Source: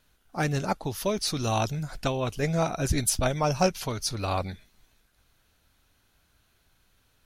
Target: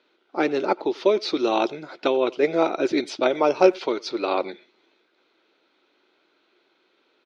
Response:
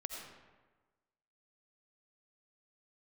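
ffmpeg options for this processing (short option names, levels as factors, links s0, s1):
-filter_complex "[0:a]highpass=f=320:w=0.5412,highpass=f=320:w=1.3066,equalizer=f=350:t=q:w=4:g=9,equalizer=f=720:t=q:w=4:g=-6,equalizer=f=1100:t=q:w=4:g=-5,equalizer=f=1700:t=q:w=4:g=-9,equalizer=f=2900:t=q:w=4:g=-6,lowpass=f=3600:w=0.5412,lowpass=f=3600:w=1.3066,asplit=2[s0][s1];[s1]adelay=90,highpass=300,lowpass=3400,asoftclip=type=hard:threshold=0.0891,volume=0.0708[s2];[s0][s2]amix=inputs=2:normalize=0,volume=2.82"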